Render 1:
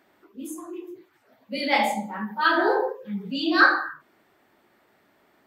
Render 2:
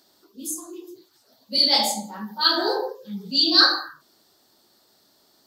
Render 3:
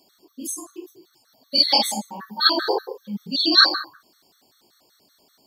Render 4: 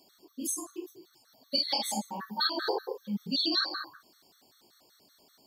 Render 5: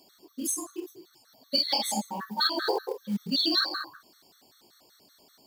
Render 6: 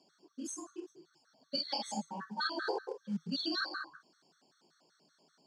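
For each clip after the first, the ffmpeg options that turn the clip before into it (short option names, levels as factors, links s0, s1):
-af "highshelf=f=3200:t=q:w=3:g=12.5,volume=0.794"
-af "afftfilt=real='re*gt(sin(2*PI*5.2*pts/sr)*(1-2*mod(floor(b*sr/1024/1100),2)),0)':imag='im*gt(sin(2*PI*5.2*pts/sr)*(1-2*mod(floor(b*sr/1024/1100),2)),0)':win_size=1024:overlap=0.75,volume=1.5"
-af "acompressor=threshold=0.0708:ratio=16,volume=0.75"
-af "acrusher=bits=6:mode=log:mix=0:aa=0.000001,volume=1.41"
-af "highpass=f=140:w=0.5412,highpass=f=140:w=1.3066,equalizer=f=160:t=q:w=4:g=8,equalizer=f=1500:t=q:w=4:g=6,equalizer=f=2100:t=q:w=4:g=-6,equalizer=f=3800:t=q:w=4:g=-8,lowpass=f=7100:w=0.5412,lowpass=f=7100:w=1.3066,volume=0.398"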